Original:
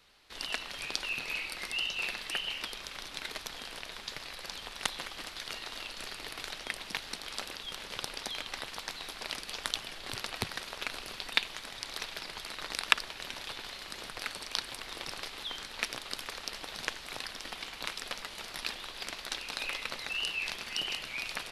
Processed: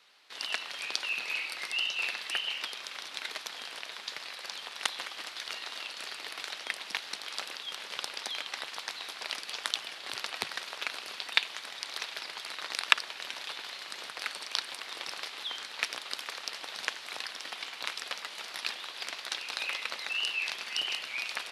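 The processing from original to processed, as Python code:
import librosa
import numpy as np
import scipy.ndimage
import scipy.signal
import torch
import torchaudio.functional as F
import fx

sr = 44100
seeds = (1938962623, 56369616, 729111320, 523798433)

y = fx.weighting(x, sr, curve='A')
y = y * librosa.db_to_amplitude(1.0)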